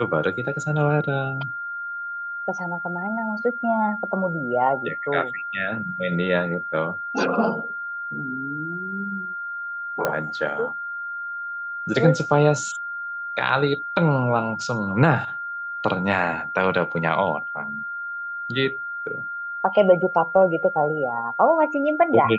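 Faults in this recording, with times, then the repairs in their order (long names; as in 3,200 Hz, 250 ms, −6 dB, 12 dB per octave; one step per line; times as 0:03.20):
whistle 1,400 Hz −28 dBFS
0:10.05: click −8 dBFS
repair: click removal
notch filter 1,400 Hz, Q 30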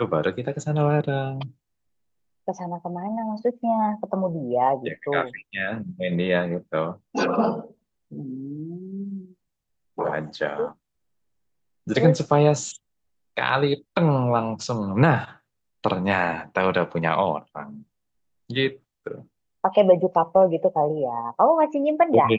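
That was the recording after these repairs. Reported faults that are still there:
none of them is left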